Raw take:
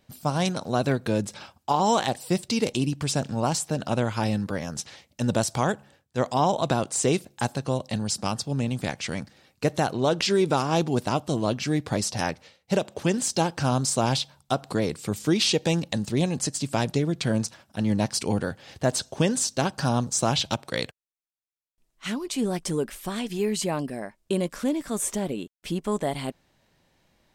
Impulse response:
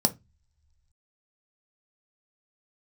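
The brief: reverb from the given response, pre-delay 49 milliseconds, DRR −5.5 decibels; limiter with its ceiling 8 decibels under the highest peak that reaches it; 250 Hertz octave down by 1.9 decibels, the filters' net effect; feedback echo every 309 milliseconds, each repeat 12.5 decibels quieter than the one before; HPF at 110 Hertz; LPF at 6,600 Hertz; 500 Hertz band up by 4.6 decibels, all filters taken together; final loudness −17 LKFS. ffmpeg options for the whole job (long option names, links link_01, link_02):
-filter_complex "[0:a]highpass=110,lowpass=6600,equalizer=frequency=250:width_type=o:gain=-4.5,equalizer=frequency=500:width_type=o:gain=7,alimiter=limit=-14.5dB:level=0:latency=1,aecho=1:1:309|618|927:0.237|0.0569|0.0137,asplit=2[link_01][link_02];[1:a]atrim=start_sample=2205,adelay=49[link_03];[link_02][link_03]afir=irnorm=-1:irlink=0,volume=-4dB[link_04];[link_01][link_04]amix=inputs=2:normalize=0,volume=-0.5dB"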